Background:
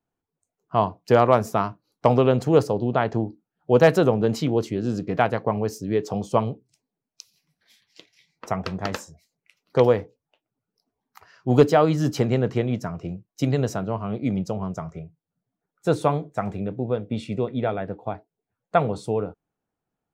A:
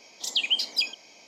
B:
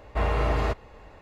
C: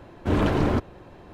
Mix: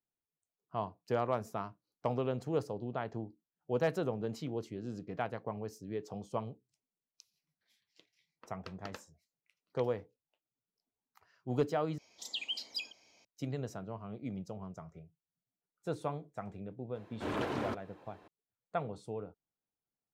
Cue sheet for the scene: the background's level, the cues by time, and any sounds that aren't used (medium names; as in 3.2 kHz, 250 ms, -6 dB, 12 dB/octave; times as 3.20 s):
background -16 dB
11.98 s: replace with A -13.5 dB + peaking EQ 81 Hz +13.5 dB 0.87 oct
16.95 s: add C -9 dB + high-pass 480 Hz 6 dB/octave
not used: B